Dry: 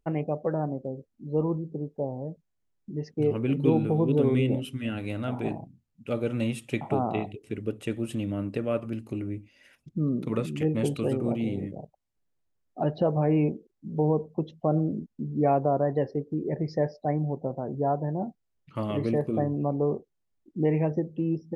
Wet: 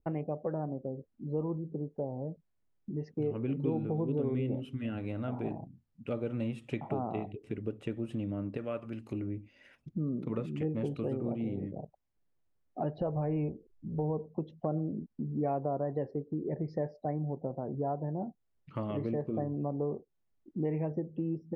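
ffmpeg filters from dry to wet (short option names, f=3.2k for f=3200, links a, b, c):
-filter_complex "[0:a]asplit=3[a][b][c];[a]afade=t=out:st=8.56:d=0.02[d];[b]tiltshelf=f=1.1k:g=-6.5,afade=t=in:st=8.56:d=0.02,afade=t=out:st=9.12:d=0.02[e];[c]afade=t=in:st=9.12:d=0.02[f];[d][e][f]amix=inputs=3:normalize=0,asplit=3[g][h][i];[g]afade=t=out:st=12.96:d=0.02[j];[h]asubboost=boost=6:cutoff=80,afade=t=in:st=12.96:d=0.02,afade=t=out:st=14.17:d=0.02[k];[i]afade=t=in:st=14.17:d=0.02[l];[j][k][l]amix=inputs=3:normalize=0,aemphasis=mode=reproduction:type=75fm,acompressor=threshold=-36dB:ratio=2,adynamicequalizer=threshold=0.00251:dfrequency=1500:dqfactor=0.7:tfrequency=1500:tqfactor=0.7:attack=5:release=100:ratio=0.375:range=2:mode=cutabove:tftype=highshelf"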